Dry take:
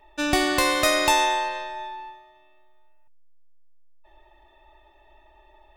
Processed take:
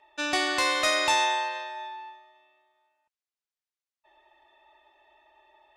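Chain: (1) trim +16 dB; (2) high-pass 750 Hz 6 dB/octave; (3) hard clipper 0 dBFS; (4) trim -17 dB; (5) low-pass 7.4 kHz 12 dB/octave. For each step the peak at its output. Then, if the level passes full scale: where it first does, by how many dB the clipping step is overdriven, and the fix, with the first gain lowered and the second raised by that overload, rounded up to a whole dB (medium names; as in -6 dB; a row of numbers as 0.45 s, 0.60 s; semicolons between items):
+8.5 dBFS, +8.0 dBFS, 0.0 dBFS, -17.0 dBFS, -16.0 dBFS; step 1, 8.0 dB; step 1 +8 dB, step 4 -9 dB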